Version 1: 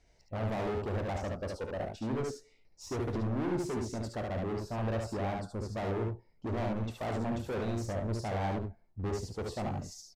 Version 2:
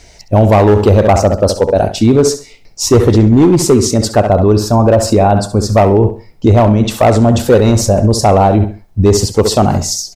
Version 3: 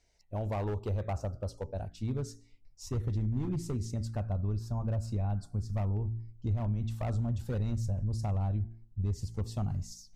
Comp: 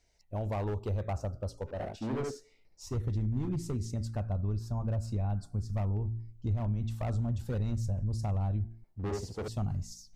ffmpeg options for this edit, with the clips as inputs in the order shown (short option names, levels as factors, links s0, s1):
-filter_complex "[0:a]asplit=2[s0][s1];[2:a]asplit=3[s2][s3][s4];[s2]atrim=end=1.87[s5];[s0]atrim=start=1.63:end=2.98[s6];[s3]atrim=start=2.74:end=8.842[s7];[s1]atrim=start=8.838:end=9.482[s8];[s4]atrim=start=9.478[s9];[s5][s6]acrossfade=d=0.24:c1=tri:c2=tri[s10];[s10][s7]acrossfade=d=0.24:c1=tri:c2=tri[s11];[s11][s8]acrossfade=d=0.004:c1=hsin:c2=hsin[s12];[s12][s9]acrossfade=d=0.004:c1=hsin:c2=hsin"